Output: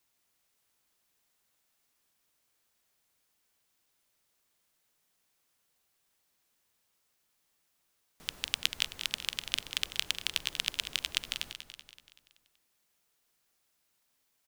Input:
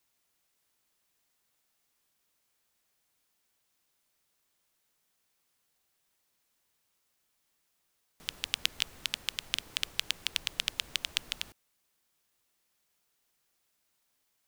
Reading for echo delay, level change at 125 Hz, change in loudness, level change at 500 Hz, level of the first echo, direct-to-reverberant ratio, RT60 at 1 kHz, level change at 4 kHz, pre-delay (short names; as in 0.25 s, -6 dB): 0.19 s, +0.5 dB, +0.5 dB, +0.5 dB, -10.0 dB, none, none, +0.5 dB, none